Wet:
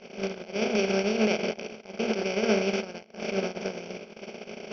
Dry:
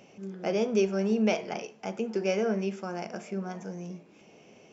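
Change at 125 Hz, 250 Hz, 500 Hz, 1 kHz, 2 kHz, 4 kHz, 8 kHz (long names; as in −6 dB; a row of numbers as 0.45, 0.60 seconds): −0.5 dB, +0.5 dB, +1.5 dB, +1.5 dB, +6.5 dB, +8.0 dB, can't be measured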